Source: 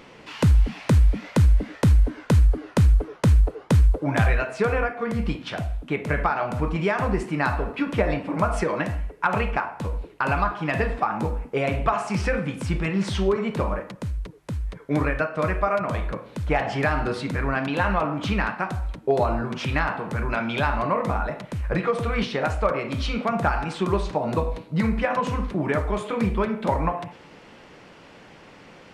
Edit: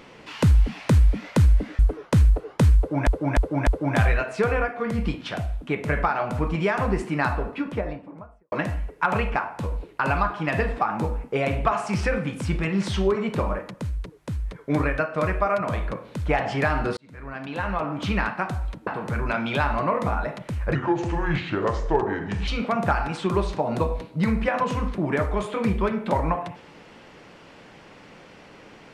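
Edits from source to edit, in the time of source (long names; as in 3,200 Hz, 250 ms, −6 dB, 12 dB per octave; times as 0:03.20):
0:01.79–0:02.90: remove
0:03.88–0:04.18: repeat, 4 plays
0:07.36–0:08.73: fade out and dull
0:17.18–0:18.40: fade in
0:19.08–0:19.90: remove
0:21.78–0:23.04: play speed 73%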